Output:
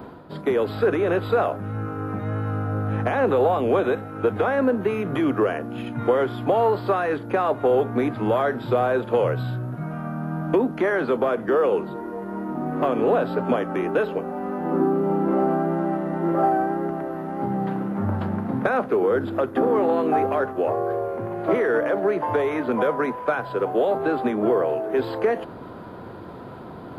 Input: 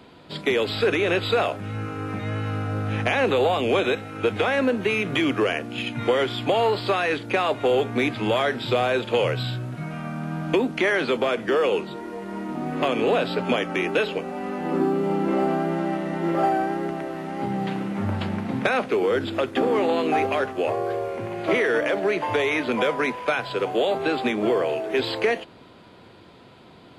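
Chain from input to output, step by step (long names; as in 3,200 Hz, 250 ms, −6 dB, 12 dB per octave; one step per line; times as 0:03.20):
flat-topped bell 4,400 Hz −15 dB 2.5 octaves
reversed playback
upward compression, threshold −29 dBFS
reversed playback
level +1.5 dB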